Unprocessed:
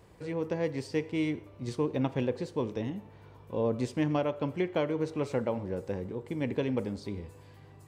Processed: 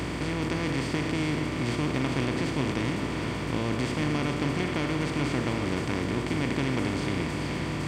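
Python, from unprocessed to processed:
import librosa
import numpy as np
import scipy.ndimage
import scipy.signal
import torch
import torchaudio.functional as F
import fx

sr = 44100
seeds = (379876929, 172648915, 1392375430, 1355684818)

p1 = fx.bin_compress(x, sr, power=0.2)
p2 = fx.peak_eq(p1, sr, hz=540.0, db=-14.5, octaves=1.2)
p3 = fx.add_hum(p2, sr, base_hz=60, snr_db=11)
y = p3 + fx.echo_single(p3, sr, ms=427, db=-8.0, dry=0)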